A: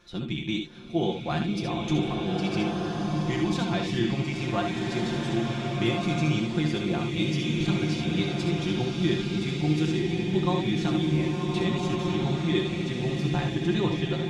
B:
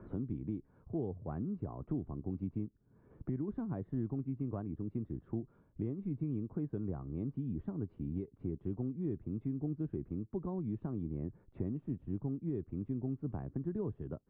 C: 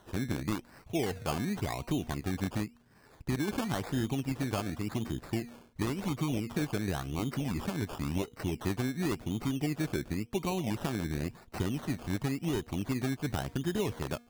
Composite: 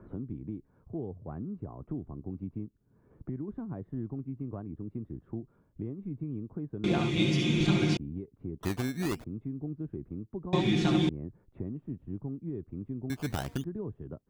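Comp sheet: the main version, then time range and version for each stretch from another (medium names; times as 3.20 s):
B
6.84–7.97 s: from A
8.63–9.24 s: from C
10.53–11.09 s: from A
13.10–13.64 s: from C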